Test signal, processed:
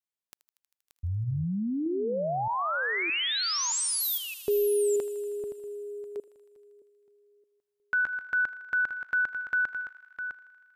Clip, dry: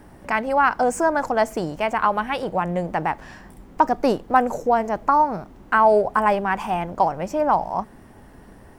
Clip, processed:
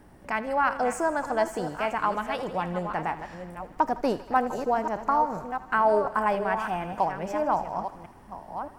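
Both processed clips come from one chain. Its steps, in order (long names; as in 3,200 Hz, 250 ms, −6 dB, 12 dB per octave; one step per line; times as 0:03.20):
delay that plays each chunk backwards 620 ms, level −9 dB
feedback echo with a high-pass in the loop 79 ms, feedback 81%, high-pass 560 Hz, level −15.5 dB
level −6.5 dB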